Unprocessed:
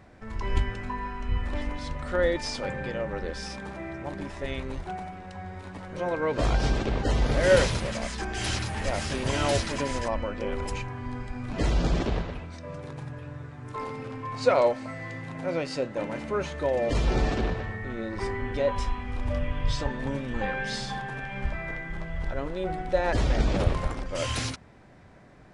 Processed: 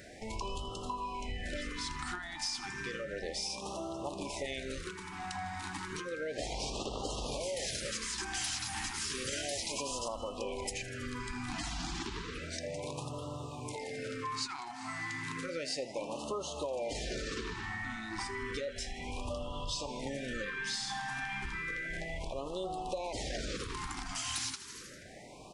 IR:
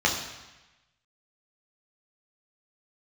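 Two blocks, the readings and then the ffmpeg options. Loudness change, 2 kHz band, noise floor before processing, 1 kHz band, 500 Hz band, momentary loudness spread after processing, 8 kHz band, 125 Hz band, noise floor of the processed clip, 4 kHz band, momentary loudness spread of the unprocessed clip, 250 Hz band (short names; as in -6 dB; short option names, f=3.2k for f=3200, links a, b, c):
-8.5 dB, -5.5 dB, -44 dBFS, -7.5 dB, -11.5 dB, 5 LU, +1.5 dB, -14.5 dB, -46 dBFS, -2.0 dB, 11 LU, -10.0 dB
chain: -filter_complex "[0:a]alimiter=limit=-18.5dB:level=0:latency=1:release=41,aresample=32000,aresample=44100,aeval=exprs='0.126*(cos(1*acos(clip(val(0)/0.126,-1,1)))-cos(1*PI/2))+0.00158*(cos(4*acos(clip(val(0)/0.126,-1,1)))-cos(4*PI/2))':c=same,bass=f=250:g=-8,treble=f=4k:g=10,acontrast=89,lowshelf=f=490:g=-3,asplit=7[a][b][c][d][e][f][g];[b]adelay=80,afreqshift=140,volume=-17.5dB[h];[c]adelay=160,afreqshift=280,volume=-21.4dB[i];[d]adelay=240,afreqshift=420,volume=-25.3dB[j];[e]adelay=320,afreqshift=560,volume=-29.1dB[k];[f]adelay=400,afreqshift=700,volume=-33dB[l];[g]adelay=480,afreqshift=840,volume=-36.9dB[m];[a][h][i][j][k][l][m]amix=inputs=7:normalize=0,acompressor=threshold=-34dB:ratio=6,afftfilt=real='re*(1-between(b*sr/1024,470*pow(1900/470,0.5+0.5*sin(2*PI*0.32*pts/sr))/1.41,470*pow(1900/470,0.5+0.5*sin(2*PI*0.32*pts/sr))*1.41))':imag='im*(1-between(b*sr/1024,470*pow(1900/470,0.5+0.5*sin(2*PI*0.32*pts/sr))/1.41,470*pow(1900/470,0.5+0.5*sin(2*PI*0.32*pts/sr))*1.41))':win_size=1024:overlap=0.75,volume=-1dB"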